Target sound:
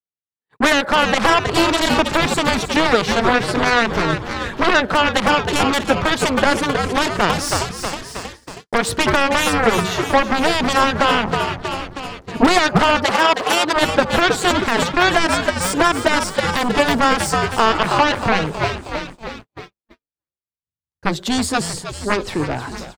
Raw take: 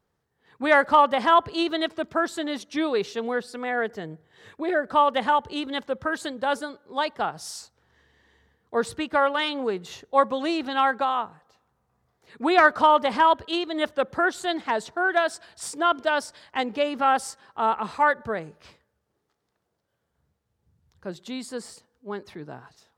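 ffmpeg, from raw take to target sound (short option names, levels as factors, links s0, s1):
-filter_complex "[0:a]asettb=1/sr,asplit=3[s0][s1][s2];[s0]atrim=end=1.524[s3];[s1]atrim=start=1.52:end=1.95,asetpts=PTS-STARTPTS,afade=t=in:d=0.004:c=qsin,afade=t=out:st=0.426:d=0.004:c=qsin,asplit=2[s4][s5];[s5]adelay=30,volume=0.75[s6];[s4][s6]amix=inputs=2:normalize=0,atrim=end_sample=18963[s7];[s2]atrim=start=1.946[s8];[s3][s7]acrossfade=d=0.004:c1=hsin:c2=qsin[s9];[s9][s8]acrossfade=d=0.004:c1=qsin:c2=hsin,acompressor=threshold=0.0708:ratio=16,asettb=1/sr,asplit=3[s10][s11][s12];[s10]atrim=end=11.114[s13];[s11]atrim=start=11.11:end=12.47,asetpts=PTS-STARTPTS,afade=t=in:d=0.004:c=qsin,afade=t=out:st=1.356:d=0.004:c=qsin,tiltshelf=f=750:g=9[s14];[s12]atrim=start=12.466[s15];[s13][s14]acrossfade=d=0.004:c1=hsin:c2=qsin[s16];[s16][s15]acrossfade=d=0.004:c1=qsin:c2=hsin,aeval=exprs='0.168*(cos(1*acos(clip(val(0)/0.168,-1,1)))-cos(1*PI/2))+0.0473*(cos(3*acos(clip(val(0)/0.168,-1,1)))-cos(3*PI/2))+0.00841*(cos(5*acos(clip(val(0)/0.168,-1,1)))-cos(5*PI/2))+0.0237*(cos(7*acos(clip(val(0)/0.168,-1,1)))-cos(7*PI/2))':c=same,asplit=7[s17][s18][s19][s20][s21][s22][s23];[s18]adelay=317,afreqshift=-89,volume=0.282[s24];[s19]adelay=634,afreqshift=-178,volume=0.16[s25];[s20]adelay=951,afreqshift=-267,volume=0.0912[s26];[s21]adelay=1268,afreqshift=-356,volume=0.0525[s27];[s22]adelay=1585,afreqshift=-445,volume=0.0299[s28];[s23]adelay=1902,afreqshift=-534,volume=0.017[s29];[s17][s24][s25][s26][s27][s28][s29]amix=inputs=7:normalize=0,agate=range=0.00251:threshold=0.00126:ratio=16:detection=peak,asettb=1/sr,asplit=3[s30][s31][s32];[s30]atrim=end=13.054[s33];[s31]atrim=start=13.05:end=13.76,asetpts=PTS-STARTPTS,afade=t=in:d=0.004:c=qsin,afade=t=out:st=0.706:d=0.004:c=qsin,highpass=320[s34];[s32]atrim=start=13.756[s35];[s33][s34]acrossfade=d=0.004:c1=hsin:c2=qsin[s36];[s36][s35]acrossfade=d=0.004:c1=qsin:c2=hsin,tremolo=f=190:d=0.333,alimiter=level_in=21.1:limit=0.891:release=50:level=0:latency=1,adynamicequalizer=threshold=0.0447:dfrequency=2300:dqfactor=0.7:tfrequency=2300:tqfactor=0.7:attack=5:release=100:ratio=0.375:range=2.5:mode=cutabove:tftype=highshelf,volume=0.891"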